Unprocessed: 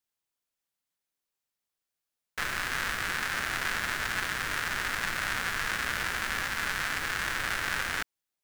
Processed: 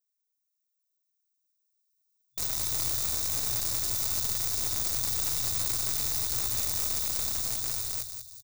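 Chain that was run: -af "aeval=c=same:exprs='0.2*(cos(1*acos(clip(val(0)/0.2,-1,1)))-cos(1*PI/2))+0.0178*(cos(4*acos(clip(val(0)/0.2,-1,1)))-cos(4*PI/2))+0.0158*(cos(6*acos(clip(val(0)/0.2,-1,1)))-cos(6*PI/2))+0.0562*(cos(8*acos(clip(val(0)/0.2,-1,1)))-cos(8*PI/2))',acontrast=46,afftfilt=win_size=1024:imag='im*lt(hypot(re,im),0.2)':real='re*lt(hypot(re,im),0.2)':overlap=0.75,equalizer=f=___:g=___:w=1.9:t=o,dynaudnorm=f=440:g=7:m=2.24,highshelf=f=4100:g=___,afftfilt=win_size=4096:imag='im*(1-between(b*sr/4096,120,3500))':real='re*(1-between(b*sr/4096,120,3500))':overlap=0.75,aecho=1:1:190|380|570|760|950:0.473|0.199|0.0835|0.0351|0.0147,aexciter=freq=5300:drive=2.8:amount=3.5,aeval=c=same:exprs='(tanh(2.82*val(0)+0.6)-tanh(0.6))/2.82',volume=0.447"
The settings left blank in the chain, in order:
14000, -13.5, 6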